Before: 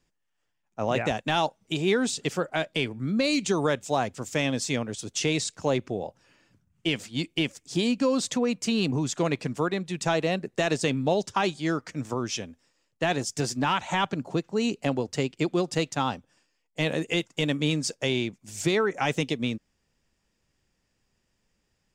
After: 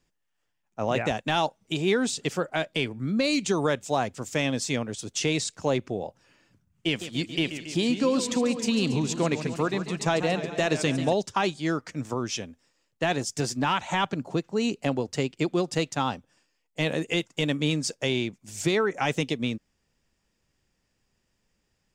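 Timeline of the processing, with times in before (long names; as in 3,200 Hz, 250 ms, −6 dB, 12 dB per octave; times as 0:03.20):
0:06.87–0:11.13: feedback echo with a swinging delay time 139 ms, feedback 68%, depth 161 cents, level −11 dB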